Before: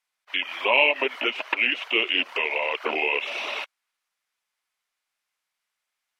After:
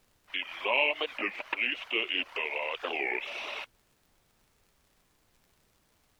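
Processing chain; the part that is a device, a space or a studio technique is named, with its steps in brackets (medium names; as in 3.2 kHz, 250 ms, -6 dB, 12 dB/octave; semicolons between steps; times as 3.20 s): warped LP (warped record 33 1/3 rpm, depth 250 cents; crackle; pink noise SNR 34 dB); trim -7.5 dB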